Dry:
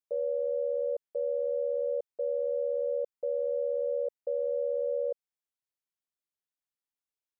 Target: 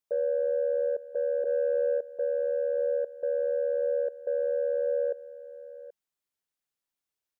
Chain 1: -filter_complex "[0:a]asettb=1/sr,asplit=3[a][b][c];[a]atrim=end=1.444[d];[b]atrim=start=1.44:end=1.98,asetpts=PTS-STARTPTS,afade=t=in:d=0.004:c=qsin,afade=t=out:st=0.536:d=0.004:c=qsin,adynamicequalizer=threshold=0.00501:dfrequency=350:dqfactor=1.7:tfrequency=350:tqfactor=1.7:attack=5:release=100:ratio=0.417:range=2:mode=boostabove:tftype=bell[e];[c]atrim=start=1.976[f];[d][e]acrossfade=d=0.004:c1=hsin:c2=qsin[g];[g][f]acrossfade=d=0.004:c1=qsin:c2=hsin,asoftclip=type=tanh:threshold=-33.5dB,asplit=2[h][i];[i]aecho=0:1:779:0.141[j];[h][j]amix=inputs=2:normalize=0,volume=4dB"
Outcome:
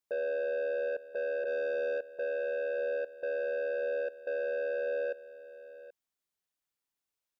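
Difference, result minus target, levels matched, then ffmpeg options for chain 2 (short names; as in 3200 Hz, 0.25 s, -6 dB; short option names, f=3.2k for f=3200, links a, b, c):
soft clip: distortion +16 dB
-filter_complex "[0:a]asettb=1/sr,asplit=3[a][b][c];[a]atrim=end=1.444[d];[b]atrim=start=1.44:end=1.98,asetpts=PTS-STARTPTS,afade=t=in:d=0.004:c=qsin,afade=t=out:st=0.536:d=0.004:c=qsin,adynamicequalizer=threshold=0.00501:dfrequency=350:dqfactor=1.7:tfrequency=350:tqfactor=1.7:attack=5:release=100:ratio=0.417:range=2:mode=boostabove:tftype=bell[e];[c]atrim=start=1.976[f];[d][e]acrossfade=d=0.004:c1=hsin:c2=qsin[g];[g][f]acrossfade=d=0.004:c1=qsin:c2=hsin,asoftclip=type=tanh:threshold=-21.5dB,asplit=2[h][i];[i]aecho=0:1:779:0.141[j];[h][j]amix=inputs=2:normalize=0,volume=4dB"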